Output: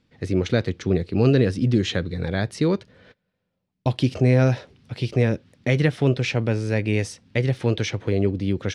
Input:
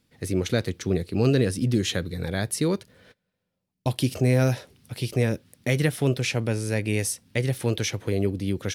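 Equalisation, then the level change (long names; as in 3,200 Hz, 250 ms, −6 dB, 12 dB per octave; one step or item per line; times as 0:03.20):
high-frequency loss of the air 130 metres
+3.5 dB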